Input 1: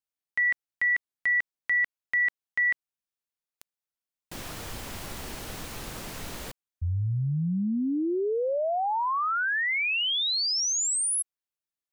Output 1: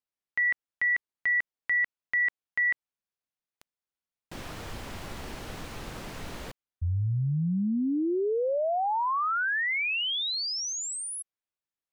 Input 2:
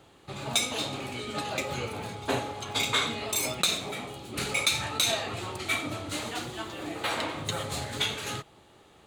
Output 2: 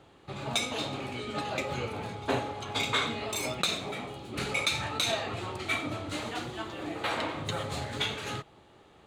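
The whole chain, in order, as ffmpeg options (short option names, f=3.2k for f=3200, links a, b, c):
-af "lowpass=f=3.4k:p=1"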